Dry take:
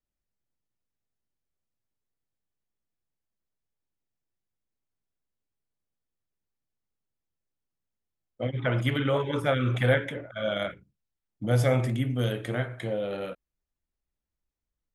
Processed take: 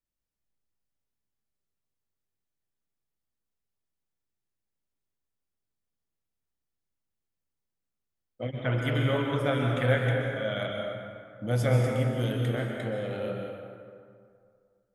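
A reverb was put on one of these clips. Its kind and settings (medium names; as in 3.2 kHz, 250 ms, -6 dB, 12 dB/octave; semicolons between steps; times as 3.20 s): plate-style reverb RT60 2.2 s, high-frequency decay 0.55×, pre-delay 115 ms, DRR 1 dB; trim -3.5 dB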